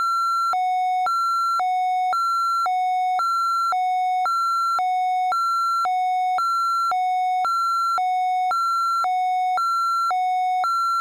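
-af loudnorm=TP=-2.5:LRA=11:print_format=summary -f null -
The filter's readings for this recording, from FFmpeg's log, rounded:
Input Integrated:    -21.0 LUFS
Input True Peak:     -16.5 dBTP
Input LRA:             0.0 LU
Input Threshold:     -31.0 LUFS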